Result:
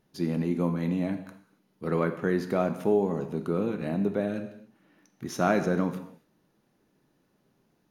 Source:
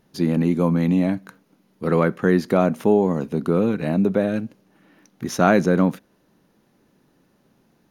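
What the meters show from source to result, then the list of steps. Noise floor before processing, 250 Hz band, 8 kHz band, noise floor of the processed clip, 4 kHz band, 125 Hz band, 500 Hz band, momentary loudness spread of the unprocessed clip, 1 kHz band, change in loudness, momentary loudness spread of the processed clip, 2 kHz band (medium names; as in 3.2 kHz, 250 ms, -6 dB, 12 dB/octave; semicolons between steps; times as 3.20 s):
-63 dBFS, -8.5 dB, -8.0 dB, -70 dBFS, -7.5 dB, -8.5 dB, -7.5 dB, 11 LU, -7.5 dB, -8.0 dB, 13 LU, -8.0 dB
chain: gated-style reverb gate 310 ms falling, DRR 7 dB; trim -8.5 dB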